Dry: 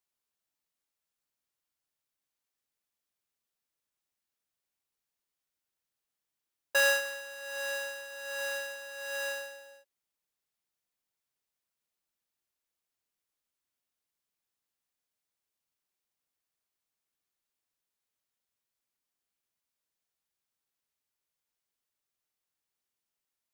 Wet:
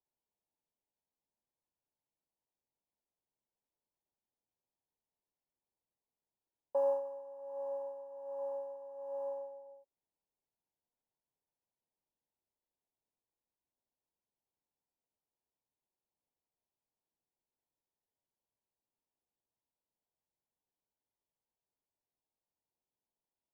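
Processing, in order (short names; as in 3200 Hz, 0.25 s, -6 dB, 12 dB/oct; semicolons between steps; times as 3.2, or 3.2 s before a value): elliptic low-pass 970 Hz, stop band 40 dB; gain +1 dB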